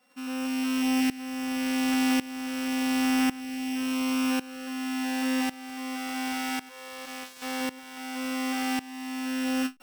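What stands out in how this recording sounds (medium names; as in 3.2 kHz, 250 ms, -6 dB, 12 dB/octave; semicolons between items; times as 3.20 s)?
a buzz of ramps at a fixed pitch in blocks of 16 samples; tremolo saw up 0.91 Hz, depth 90%; AAC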